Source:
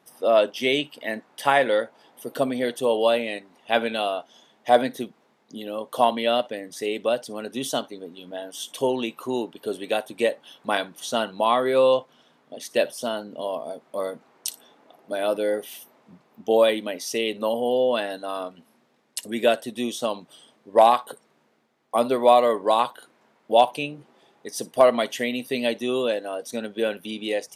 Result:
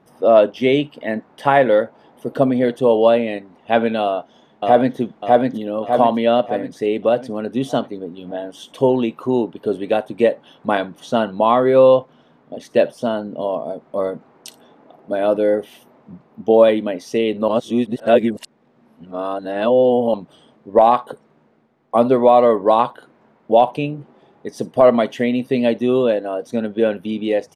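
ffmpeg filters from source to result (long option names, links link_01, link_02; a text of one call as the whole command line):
ffmpeg -i in.wav -filter_complex "[0:a]asplit=2[link_01][link_02];[link_02]afade=type=in:start_time=4.02:duration=0.01,afade=type=out:start_time=4.97:duration=0.01,aecho=0:1:600|1200|1800|2400|3000|3600|4200:0.794328|0.397164|0.198582|0.099291|0.0496455|0.0248228|0.0124114[link_03];[link_01][link_03]amix=inputs=2:normalize=0,asplit=3[link_04][link_05][link_06];[link_04]atrim=end=17.482[link_07];[link_05]atrim=start=17.478:end=20.142,asetpts=PTS-STARTPTS,areverse[link_08];[link_06]atrim=start=20.138[link_09];[link_07][link_08]acrossfade=duration=0.004:curve1=hsin:curve2=hsin[link_10];[link_10][link_09]acrossfade=duration=0.004:curve1=hsin:curve2=hsin,lowpass=frequency=1100:poles=1,lowshelf=frequency=140:gain=12,alimiter=level_in=8.5dB:limit=-1dB:release=50:level=0:latency=1,volume=-1dB" out.wav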